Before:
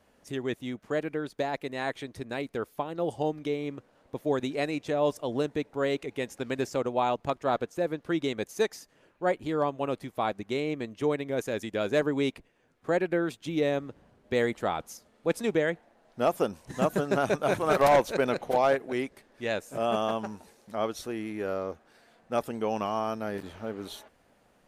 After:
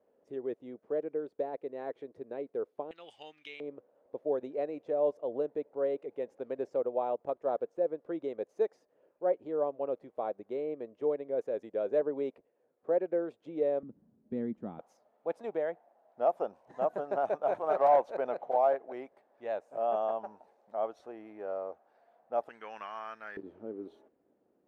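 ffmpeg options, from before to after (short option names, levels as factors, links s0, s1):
-af "asetnsamples=n=441:p=0,asendcmd='2.91 bandpass f 2600;3.6 bandpass f 520;13.83 bandpass f 220;14.79 bandpass f 700;22.49 bandpass f 1700;23.37 bandpass f 350',bandpass=f=470:t=q:w=2.6:csg=0"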